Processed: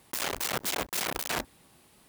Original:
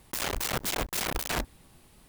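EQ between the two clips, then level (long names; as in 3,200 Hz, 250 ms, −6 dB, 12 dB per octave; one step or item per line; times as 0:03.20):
high-pass filter 220 Hz 6 dB per octave
0.0 dB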